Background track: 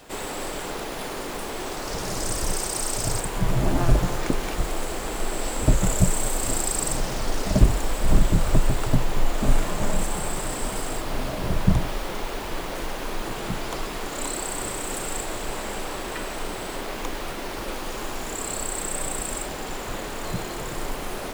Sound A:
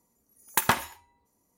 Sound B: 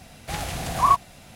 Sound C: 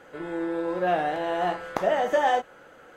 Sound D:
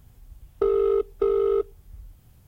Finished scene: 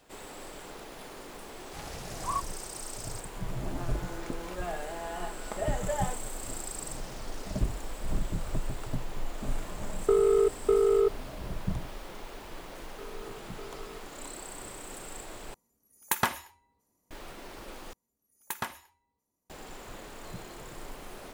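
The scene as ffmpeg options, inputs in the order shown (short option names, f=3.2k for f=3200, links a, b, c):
-filter_complex "[4:a]asplit=2[a][b];[1:a]asplit=2[c][d];[0:a]volume=-13dB[e];[3:a]aecho=1:1:4.8:0.65[f];[b]bandpass=f=2.3k:t=q:w=0.59:csg=0[g];[e]asplit=3[h][i][j];[h]atrim=end=15.544[k];[c]atrim=end=1.57,asetpts=PTS-STARTPTS,volume=-4dB[l];[i]atrim=start=17.106:end=17.934[m];[d]atrim=end=1.57,asetpts=PTS-STARTPTS,volume=-12dB[n];[j]atrim=start=19.496[o];[2:a]atrim=end=1.35,asetpts=PTS-STARTPTS,volume=-14.5dB,afade=t=in:d=0.004:c=hsin,afade=t=out:st=1.346:d=0.004:c=hsin,adelay=1450[p];[f]atrim=end=2.96,asetpts=PTS-STARTPTS,volume=-12.5dB,afade=t=in:d=0.004:c=hsin,afade=t=out:st=2.956:d=0.004:c=hsin,adelay=3750[q];[a]atrim=end=2.47,asetpts=PTS-STARTPTS,volume=-1.5dB,afade=t=in:d=0.004:c=hsin,afade=t=out:st=2.466:d=0.004:c=hsin,adelay=9470[r];[g]atrim=end=2.47,asetpts=PTS-STARTPTS,volume=-15dB,afade=t=in:d=0.004:c=hsin,afade=t=out:st=2.466:d=0.004:c=hsin,adelay=12370[s];[k][l]acrossfade=d=0.004:c1=hsin:c2=hsin[t];[t][m]acrossfade=d=0.004:c1=hsin:c2=hsin[u];[u][n]acrossfade=d=0.004:c1=hsin:c2=hsin[v];[v][o]acrossfade=d=0.004:c1=hsin:c2=hsin[w];[w][p][q][r][s]amix=inputs=5:normalize=0"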